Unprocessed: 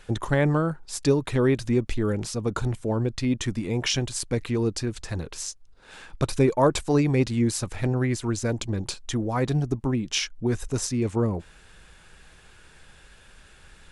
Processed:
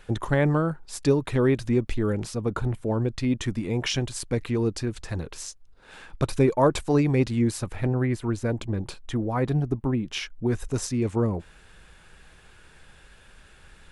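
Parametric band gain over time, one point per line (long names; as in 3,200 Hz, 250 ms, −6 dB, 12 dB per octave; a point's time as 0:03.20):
parametric band 6,400 Hz 1.6 octaves
0:02.25 −4.5 dB
0:02.67 −14 dB
0:02.93 −4.5 dB
0:07.39 −4.5 dB
0:07.93 −12.5 dB
0:10.09 −12.5 dB
0:10.72 −3.5 dB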